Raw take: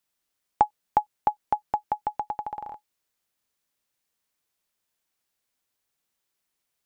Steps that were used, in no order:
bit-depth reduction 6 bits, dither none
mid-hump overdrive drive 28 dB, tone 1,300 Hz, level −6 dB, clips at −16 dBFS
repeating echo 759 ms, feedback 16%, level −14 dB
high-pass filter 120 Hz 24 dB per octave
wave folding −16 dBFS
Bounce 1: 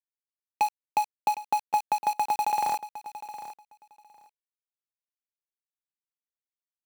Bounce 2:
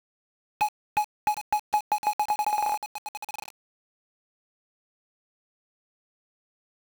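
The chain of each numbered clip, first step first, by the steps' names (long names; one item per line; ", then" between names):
mid-hump overdrive, then wave folding, then high-pass filter, then bit-depth reduction, then repeating echo
high-pass filter, then wave folding, then mid-hump overdrive, then repeating echo, then bit-depth reduction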